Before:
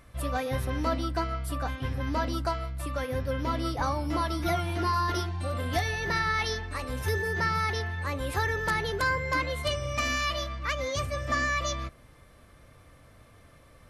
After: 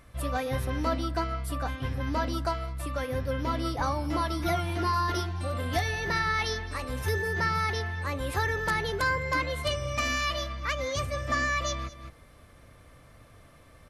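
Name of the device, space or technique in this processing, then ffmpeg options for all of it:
ducked delay: -filter_complex "[0:a]asplit=3[a][b][c];[b]adelay=210,volume=-6dB[d];[c]apad=whole_len=622149[e];[d][e]sidechaincompress=threshold=-48dB:ratio=8:attack=37:release=197[f];[a][f]amix=inputs=2:normalize=0"

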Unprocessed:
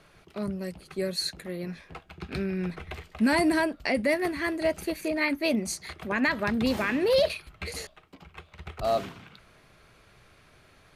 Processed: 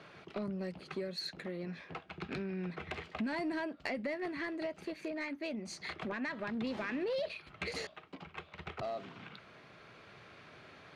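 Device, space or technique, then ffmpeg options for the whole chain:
AM radio: -af "highpass=140,lowpass=4.2k,acompressor=threshold=-38dB:ratio=6,asoftclip=type=tanh:threshold=-31dB,tremolo=f=0.28:d=0.28,volume=4dB"

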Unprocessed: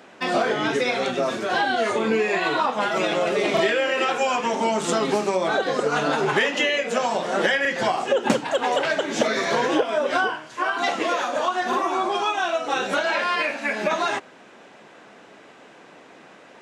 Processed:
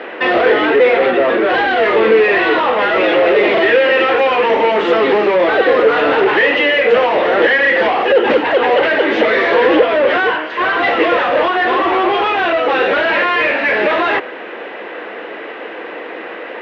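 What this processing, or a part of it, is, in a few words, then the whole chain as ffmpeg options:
overdrive pedal into a guitar cabinet: -filter_complex "[0:a]asettb=1/sr,asplit=3[a][b][c];[a]atrim=end=0.654[d];[b]atrim=start=0.65:end=1.49,asetpts=PTS-STARTPTS,afade=t=in:d=0.004:c=qsin,afade=t=out:st=0.836:d=0.004:c=qsin,equalizer=f=6.3k:w=0.55:g=-10[e];[c]atrim=start=1.486[f];[d][e]acrossfade=d=0.004:c1=hsin:c2=qsin[g];[g][f]acrossfade=d=0.004:c1=qsin:c2=hsin,asplit=2[h][i];[i]highpass=f=720:p=1,volume=28dB,asoftclip=type=tanh:threshold=-6.5dB[j];[h][j]amix=inputs=2:normalize=0,lowpass=f=1.9k:p=1,volume=-6dB,highpass=83,equalizer=f=95:t=q:w=4:g=-8,equalizer=f=150:t=q:w=4:g=-7,equalizer=f=330:t=q:w=4:g=8,equalizer=f=480:t=q:w=4:g=10,equalizer=f=1.9k:t=q:w=4:g=7,equalizer=f=2.8k:t=q:w=4:g=4,lowpass=f=3.8k:w=0.5412,lowpass=f=3.8k:w=1.3066,volume=-2dB"

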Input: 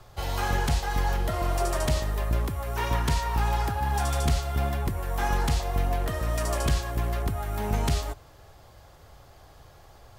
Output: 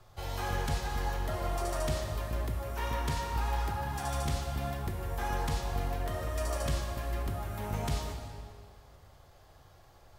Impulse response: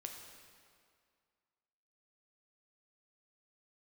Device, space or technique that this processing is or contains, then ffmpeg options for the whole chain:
stairwell: -filter_complex "[1:a]atrim=start_sample=2205[a];[0:a][a]afir=irnorm=-1:irlink=0,volume=-3dB"

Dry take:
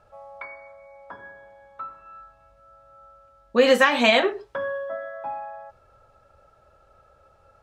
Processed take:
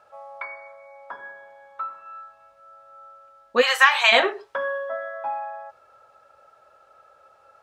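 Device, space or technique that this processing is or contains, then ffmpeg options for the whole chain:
filter by subtraction: -filter_complex "[0:a]asplit=3[a][b][c];[a]afade=t=out:st=3.61:d=0.02[d];[b]highpass=f=840:w=0.5412,highpass=f=840:w=1.3066,afade=t=in:st=3.61:d=0.02,afade=t=out:st=4.11:d=0.02[e];[c]afade=t=in:st=4.11:d=0.02[f];[d][e][f]amix=inputs=3:normalize=0,asplit=2[g][h];[h]lowpass=1k,volume=-1[i];[g][i]amix=inputs=2:normalize=0,volume=2.5dB"

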